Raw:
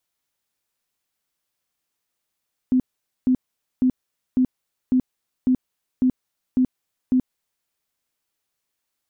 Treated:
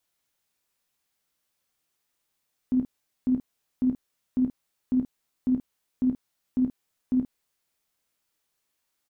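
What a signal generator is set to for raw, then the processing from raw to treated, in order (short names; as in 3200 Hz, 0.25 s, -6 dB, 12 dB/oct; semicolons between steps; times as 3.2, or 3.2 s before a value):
tone bursts 255 Hz, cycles 20, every 0.55 s, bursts 9, -14 dBFS
limiter -20.5 dBFS; early reflections 16 ms -10 dB, 29 ms -9 dB, 51 ms -8.5 dB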